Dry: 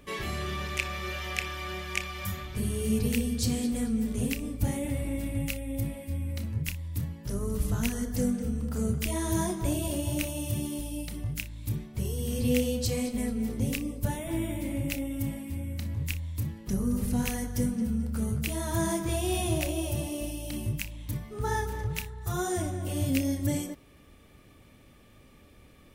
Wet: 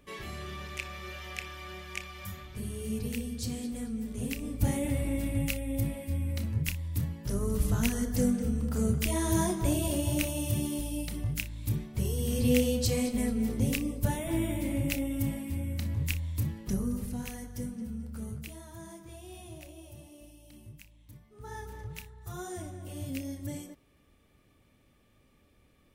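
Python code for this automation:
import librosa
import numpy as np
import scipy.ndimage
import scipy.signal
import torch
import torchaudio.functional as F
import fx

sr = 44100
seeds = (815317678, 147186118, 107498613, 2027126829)

y = fx.gain(x, sr, db=fx.line((4.11, -7.0), (4.66, 1.0), (16.61, 1.0), (17.19, -9.0), (18.34, -9.0), (18.75, -18.0), (21.27, -18.0), (21.7, -9.5)))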